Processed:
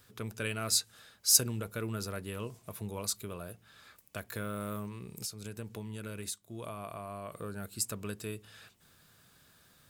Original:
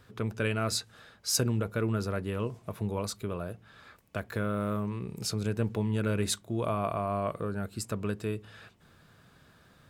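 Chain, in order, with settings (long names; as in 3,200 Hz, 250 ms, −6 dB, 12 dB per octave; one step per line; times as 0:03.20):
first-order pre-emphasis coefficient 0.8
0:04.86–0:07.32: downward compressor 6 to 1, threshold −44 dBFS, peak gain reduction 15.5 dB
level +6.5 dB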